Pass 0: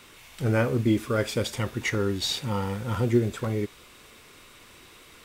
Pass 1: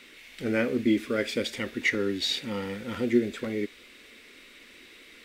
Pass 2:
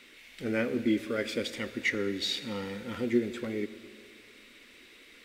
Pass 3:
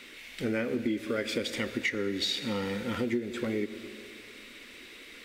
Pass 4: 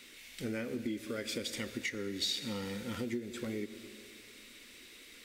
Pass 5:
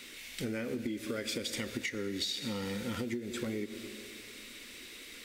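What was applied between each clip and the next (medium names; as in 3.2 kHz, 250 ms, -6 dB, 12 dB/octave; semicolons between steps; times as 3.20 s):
ten-band graphic EQ 125 Hz -11 dB, 250 Hz +11 dB, 500 Hz +5 dB, 1 kHz -7 dB, 2 kHz +12 dB, 4 kHz +6 dB; trim -7.5 dB
plate-style reverb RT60 2.2 s, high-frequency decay 0.75×, pre-delay 85 ms, DRR 14 dB; trim -3.5 dB
compression 6:1, threshold -33 dBFS, peak gain reduction 12.5 dB; trim +6 dB
tone controls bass +4 dB, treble +10 dB; trim -8.5 dB
compression 5:1, threshold -38 dBFS, peak gain reduction 8 dB; trim +5.5 dB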